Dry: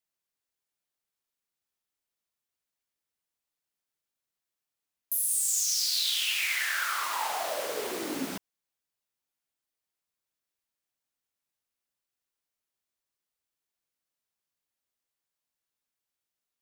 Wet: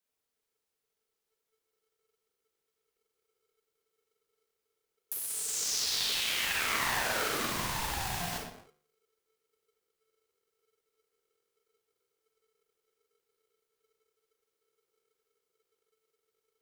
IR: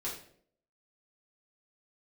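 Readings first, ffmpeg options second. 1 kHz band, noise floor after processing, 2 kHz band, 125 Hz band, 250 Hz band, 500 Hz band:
-1.0 dB, -85 dBFS, -1.5 dB, +12.0 dB, -4.0 dB, -3.5 dB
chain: -filter_complex "[0:a]asplit=2[a][b];[1:a]atrim=start_sample=2205,afade=t=out:st=0.33:d=0.01,atrim=end_sample=14994,adelay=33[c];[b][c]afir=irnorm=-1:irlink=0,volume=-3dB[d];[a][d]amix=inputs=2:normalize=0,volume=17dB,asoftclip=hard,volume=-17dB,lowshelf=f=200:g=9,acrossover=split=140|1400|5000[e][f][g][h];[e]acompressor=threshold=-59dB:ratio=4[i];[f]acompressor=threshold=-33dB:ratio=4[j];[g]acompressor=threshold=-32dB:ratio=4[k];[h]acompressor=threshold=-37dB:ratio=4[l];[i][j][k][l]amix=inputs=4:normalize=0,asubboost=boost=10.5:cutoff=54,bandreject=f=71.64:t=h:w=4,bandreject=f=143.28:t=h:w=4,bandreject=f=214.92:t=h:w=4,bandreject=f=286.56:t=h:w=4,bandreject=f=358.2:t=h:w=4,bandreject=f=429.84:t=h:w=4,bandreject=f=501.48:t=h:w=4,bandreject=f=573.12:t=h:w=4,bandreject=f=644.76:t=h:w=4,bandreject=f=716.4:t=h:w=4,bandreject=f=788.04:t=h:w=4,bandreject=f=859.68:t=h:w=4,bandreject=f=931.32:t=h:w=4,bandreject=f=1.00296k:t=h:w=4,bandreject=f=1.0746k:t=h:w=4,bandreject=f=1.14624k:t=h:w=4,bandreject=f=1.21788k:t=h:w=4,bandreject=f=1.28952k:t=h:w=4,bandreject=f=1.36116k:t=h:w=4,bandreject=f=1.4328k:t=h:w=4,bandreject=f=1.50444k:t=h:w=4,bandreject=f=1.57608k:t=h:w=4,bandreject=f=1.64772k:t=h:w=4,bandreject=f=1.71936k:t=h:w=4,bandreject=f=1.791k:t=h:w=4,bandreject=f=1.86264k:t=h:w=4,bandreject=f=1.93428k:t=h:w=4,bandreject=f=2.00592k:t=h:w=4,aeval=exprs='val(0)*sgn(sin(2*PI*440*n/s))':c=same"

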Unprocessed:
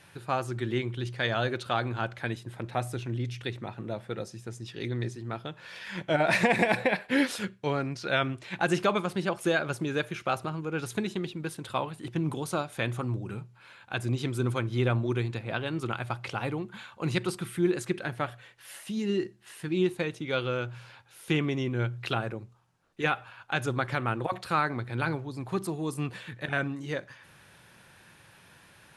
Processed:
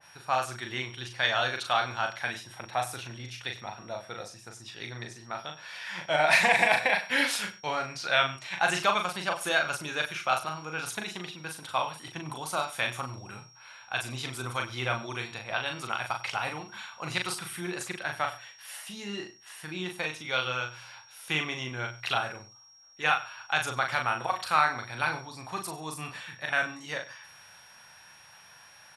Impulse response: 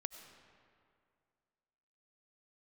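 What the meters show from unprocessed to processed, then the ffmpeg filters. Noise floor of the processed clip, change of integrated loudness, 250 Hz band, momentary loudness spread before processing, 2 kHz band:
-54 dBFS, +1.0 dB, -10.5 dB, 11 LU, +4.0 dB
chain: -filter_complex "[0:a]lowshelf=f=540:t=q:w=1.5:g=-10,aeval=exprs='val(0)+0.00141*sin(2*PI*5600*n/s)':c=same,asplit=2[a][b];[b]adelay=39,volume=-5dB[c];[a][c]amix=inputs=2:normalize=0,aecho=1:1:97:0.133,adynamicequalizer=threshold=0.0141:dfrequency=1900:dqfactor=0.7:tfrequency=1900:tqfactor=0.7:attack=5:release=100:ratio=0.375:range=2.5:mode=boostabove:tftype=highshelf"

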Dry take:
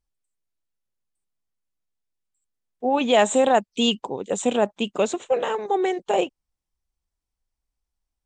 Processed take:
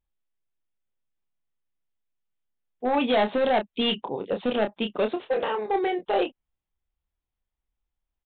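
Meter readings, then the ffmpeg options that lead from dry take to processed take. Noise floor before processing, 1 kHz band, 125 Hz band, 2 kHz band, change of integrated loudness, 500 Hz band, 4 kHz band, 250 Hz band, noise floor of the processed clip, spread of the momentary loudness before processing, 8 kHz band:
-85 dBFS, -3.5 dB, n/a, -2.0 dB, -3.5 dB, -3.5 dB, -3.0 dB, -3.0 dB, under -85 dBFS, 8 LU, under -40 dB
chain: -filter_complex "[0:a]aresample=8000,asoftclip=type=hard:threshold=-17dB,aresample=44100,asplit=2[a][b];[b]adelay=28,volume=-7dB[c];[a][c]amix=inputs=2:normalize=0,volume=-2dB"

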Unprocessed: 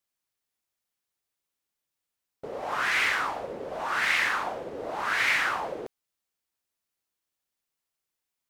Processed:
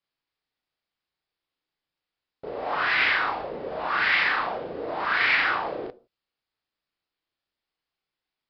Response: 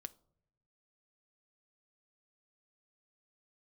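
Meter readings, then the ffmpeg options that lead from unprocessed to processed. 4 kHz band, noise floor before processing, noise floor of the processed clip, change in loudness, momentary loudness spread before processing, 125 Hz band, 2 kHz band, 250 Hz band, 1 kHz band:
+3.0 dB, under -85 dBFS, under -85 dBFS, +3.0 dB, 14 LU, +2.5 dB, +3.0 dB, +3.5 dB, +3.0 dB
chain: -filter_complex "[0:a]asplit=2[a][b];[1:a]atrim=start_sample=2205,afade=t=out:st=0.22:d=0.01,atrim=end_sample=10143,adelay=35[c];[b][c]afir=irnorm=-1:irlink=0,volume=5dB[d];[a][d]amix=inputs=2:normalize=0,aresample=11025,aresample=44100"

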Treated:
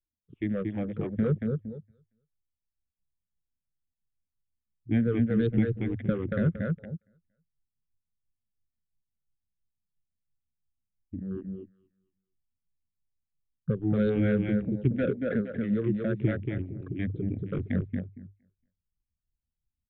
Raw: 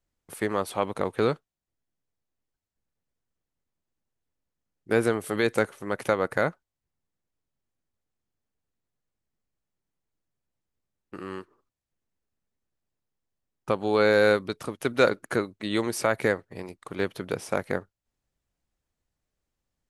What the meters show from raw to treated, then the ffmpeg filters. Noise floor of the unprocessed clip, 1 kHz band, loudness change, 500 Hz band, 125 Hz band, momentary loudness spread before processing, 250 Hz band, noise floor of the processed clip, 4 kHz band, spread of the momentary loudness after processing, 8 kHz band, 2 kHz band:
under -85 dBFS, -16.5 dB, -3.0 dB, -7.0 dB, +8.5 dB, 16 LU, +4.0 dB, under -85 dBFS, under -15 dB, 13 LU, under -35 dB, -11.5 dB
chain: -filter_complex "[0:a]afftfilt=real='re*pow(10,22/40*sin(2*PI*(0.66*log(max(b,1)*sr/1024/100)/log(2)-(-2.9)*(pts-256)/sr)))':imag='im*pow(10,22/40*sin(2*PI*(0.66*log(max(b,1)*sr/1024/100)/log(2)-(-2.9)*(pts-256)/sr)))':win_size=1024:overlap=0.75,aecho=1:1:231|462|693|924:0.631|0.189|0.0568|0.017,asubboost=boost=3.5:cutoff=180,afwtdn=0.0355,asplit=2[a][b];[b]aeval=exprs='0.944*sin(PI/2*2.51*val(0)/0.944)':c=same,volume=-11dB[c];[a][c]amix=inputs=2:normalize=0,bandreject=f=50:t=h:w=6,bandreject=f=100:t=h:w=6,aresample=8000,aresample=44100,acrossover=split=410[d][e];[d]aeval=exprs='val(0)*(1-0.5/2+0.5/2*cos(2*PI*5.9*n/s))':c=same[f];[e]aeval=exprs='val(0)*(1-0.5/2-0.5/2*cos(2*PI*5.9*n/s))':c=same[g];[f][g]amix=inputs=2:normalize=0,firequalizer=gain_entry='entry(240,0);entry(910,-28);entry(1600,-14)':delay=0.05:min_phase=1,volume=-5.5dB"

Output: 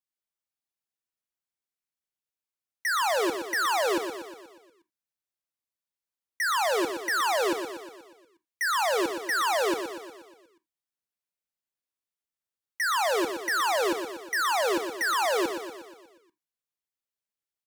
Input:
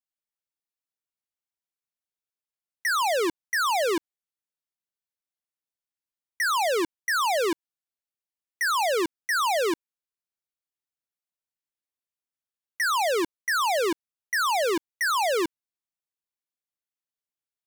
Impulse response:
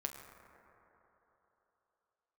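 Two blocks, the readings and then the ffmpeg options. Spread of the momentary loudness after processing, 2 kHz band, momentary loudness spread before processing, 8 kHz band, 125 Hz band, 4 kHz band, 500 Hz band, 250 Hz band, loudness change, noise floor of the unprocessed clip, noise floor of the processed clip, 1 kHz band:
13 LU, -1.0 dB, 6 LU, -1.5 dB, n/a, -1.0 dB, -1.0 dB, -1.0 dB, -1.5 dB, under -85 dBFS, under -85 dBFS, -1.0 dB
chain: -filter_complex "[0:a]aecho=1:1:120|240|360|480|600|720|840:0.398|0.223|0.125|0.0699|0.0392|0.0219|0.0123,asplit=2[a][b];[1:a]atrim=start_sample=2205,atrim=end_sample=3969[c];[b][c]afir=irnorm=-1:irlink=0,volume=-0.5dB[d];[a][d]amix=inputs=2:normalize=0,volume=-7dB"

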